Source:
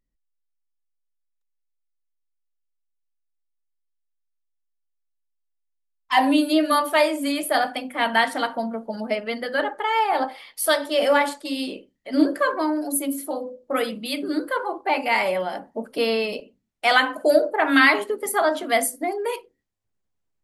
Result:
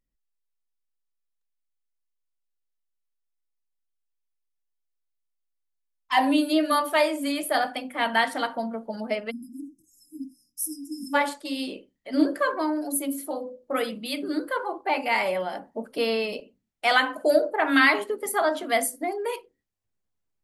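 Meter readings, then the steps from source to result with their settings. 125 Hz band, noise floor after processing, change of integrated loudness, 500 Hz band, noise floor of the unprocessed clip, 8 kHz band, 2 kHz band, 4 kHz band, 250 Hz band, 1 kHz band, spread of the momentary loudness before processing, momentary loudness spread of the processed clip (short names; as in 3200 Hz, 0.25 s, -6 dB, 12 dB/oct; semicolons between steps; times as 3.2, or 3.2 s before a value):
n/a, -78 dBFS, -3.0 dB, -4.0 dB, -75 dBFS, -3.0 dB, -3.5 dB, -4.0 dB, -3.0 dB, -4.0 dB, 11 LU, 14 LU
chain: spectral delete 9.31–11.14, 330–5000 Hz; gain -3 dB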